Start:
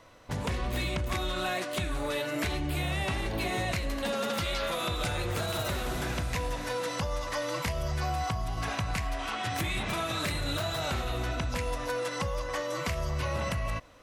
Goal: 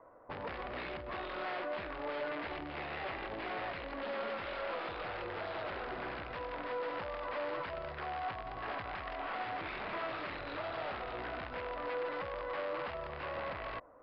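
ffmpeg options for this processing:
ffmpeg -i in.wav -filter_complex "[0:a]acrossover=split=1400[link_01][link_02];[link_01]alimiter=level_in=6.5dB:limit=-24dB:level=0:latency=1:release=21,volume=-6.5dB[link_03];[link_02]acrusher=bits=5:dc=4:mix=0:aa=0.000001[link_04];[link_03][link_04]amix=inputs=2:normalize=0,aeval=exprs='(mod(28.2*val(0)+1,2)-1)/28.2':channel_layout=same,acrossover=split=320 2500:gain=0.178 1 0.0631[link_05][link_06][link_07];[link_05][link_06][link_07]amix=inputs=3:normalize=0,aresample=11025,aresample=44100,volume=1dB" out.wav

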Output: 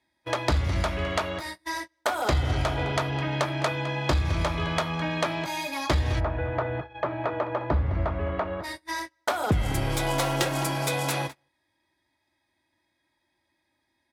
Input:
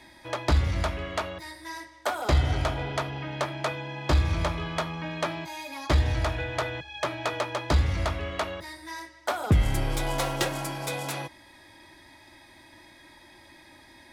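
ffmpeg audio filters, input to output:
ffmpeg -i in.wav -filter_complex "[0:a]highpass=49,acompressor=threshold=-31dB:ratio=2.5,asplit=2[link_01][link_02];[link_02]adelay=209.9,volume=-14dB,highshelf=frequency=4000:gain=-4.72[link_03];[link_01][link_03]amix=inputs=2:normalize=0,acontrast=74,agate=range=-30dB:threshold=-33dB:ratio=16:detection=peak,asplit=3[link_04][link_05][link_06];[link_04]afade=type=out:start_time=6.19:duration=0.02[link_07];[link_05]lowpass=1300,afade=type=in:start_time=6.19:duration=0.02,afade=type=out:start_time=8.63:duration=0.02[link_08];[link_06]afade=type=in:start_time=8.63:duration=0.02[link_09];[link_07][link_08][link_09]amix=inputs=3:normalize=0" out.wav

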